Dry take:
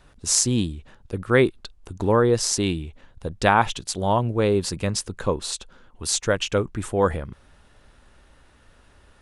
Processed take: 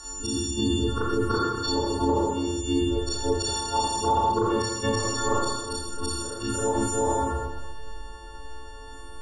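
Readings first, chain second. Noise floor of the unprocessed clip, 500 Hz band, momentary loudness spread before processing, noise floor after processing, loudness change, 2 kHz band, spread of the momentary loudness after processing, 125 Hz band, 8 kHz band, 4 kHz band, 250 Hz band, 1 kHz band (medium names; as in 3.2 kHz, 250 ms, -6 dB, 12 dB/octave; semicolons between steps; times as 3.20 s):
-56 dBFS, -4.0 dB, 15 LU, -40 dBFS, -3.5 dB, -7.5 dB, 19 LU, -4.5 dB, -5.0 dB, -1.0 dB, -1.0 dB, +0.5 dB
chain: partials quantised in pitch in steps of 4 st; static phaser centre 620 Hz, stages 6; inverted gate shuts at -14 dBFS, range -30 dB; on a send: reverse echo 334 ms -6.5 dB; on the sum: Schroeder reverb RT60 1 s, combs from 26 ms, DRR -8.5 dB; in parallel at +2.5 dB: compression, threshold -34 dBFS, peak gain reduction 19.5 dB; on the sum: peak limiter -13.5 dBFS, peak gain reduction 9 dB; low-pass 6.6 kHz 12 dB/octave; treble shelf 4.5 kHz -6 dB; hum notches 50/100 Hz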